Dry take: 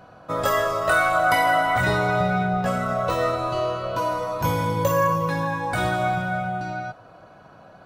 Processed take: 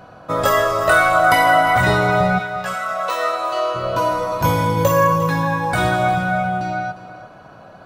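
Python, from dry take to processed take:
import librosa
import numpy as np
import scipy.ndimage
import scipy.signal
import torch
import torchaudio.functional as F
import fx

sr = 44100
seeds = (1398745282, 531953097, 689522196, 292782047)

y = fx.highpass(x, sr, hz=fx.line((2.38, 1300.0), (3.74, 510.0)), slope=12, at=(2.38, 3.74), fade=0.02)
y = fx.echo_feedback(y, sr, ms=353, feedback_pct=18, wet_db=-15)
y = y * 10.0 ** (5.5 / 20.0)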